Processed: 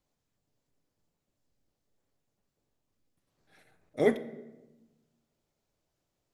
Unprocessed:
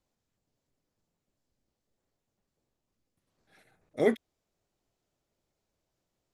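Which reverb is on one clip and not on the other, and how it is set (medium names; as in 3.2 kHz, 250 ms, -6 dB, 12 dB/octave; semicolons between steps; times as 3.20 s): simulated room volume 520 m³, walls mixed, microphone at 0.35 m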